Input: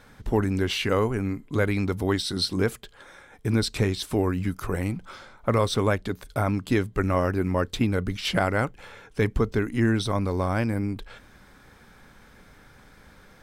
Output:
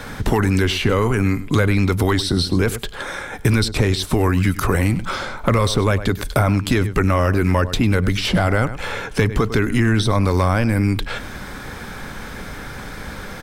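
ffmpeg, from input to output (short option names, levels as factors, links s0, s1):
-filter_complex "[0:a]asplit=2[s0][s1];[s1]adelay=99.13,volume=0.112,highshelf=f=4000:g=-2.23[s2];[s0][s2]amix=inputs=2:normalize=0,apsyclip=10,acrossover=split=92|1100[s3][s4][s5];[s3]acompressor=threshold=0.0794:ratio=4[s6];[s4]acompressor=threshold=0.112:ratio=4[s7];[s5]acompressor=threshold=0.0562:ratio=4[s8];[s6][s7][s8]amix=inputs=3:normalize=0"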